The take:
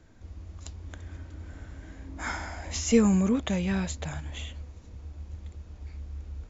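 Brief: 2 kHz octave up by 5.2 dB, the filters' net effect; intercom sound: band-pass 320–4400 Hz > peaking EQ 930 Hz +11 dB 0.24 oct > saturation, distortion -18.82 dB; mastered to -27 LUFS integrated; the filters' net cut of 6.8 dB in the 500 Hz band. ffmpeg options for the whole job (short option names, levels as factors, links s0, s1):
-af "highpass=320,lowpass=4400,equalizer=f=500:t=o:g=-7,equalizer=f=930:t=o:w=0.24:g=11,equalizer=f=2000:t=o:g=7,asoftclip=threshold=0.106,volume=2.11"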